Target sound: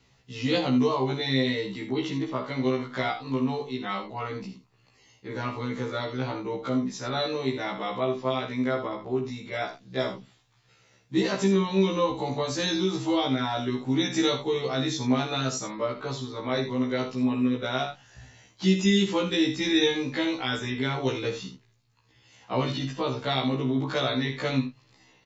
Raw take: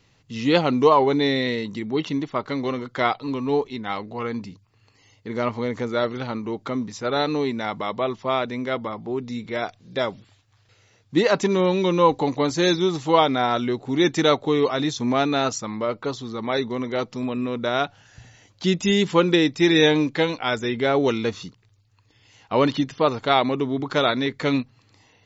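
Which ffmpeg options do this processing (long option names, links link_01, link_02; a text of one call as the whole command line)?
ffmpeg -i in.wav -filter_complex "[0:a]acrossover=split=260|3000[link_01][link_02][link_03];[link_02]acompressor=threshold=-24dB:ratio=6[link_04];[link_01][link_04][link_03]amix=inputs=3:normalize=0,aecho=1:1:52|80:0.335|0.282,afftfilt=real='re*1.73*eq(mod(b,3),0)':imag='im*1.73*eq(mod(b,3),0)':win_size=2048:overlap=0.75" out.wav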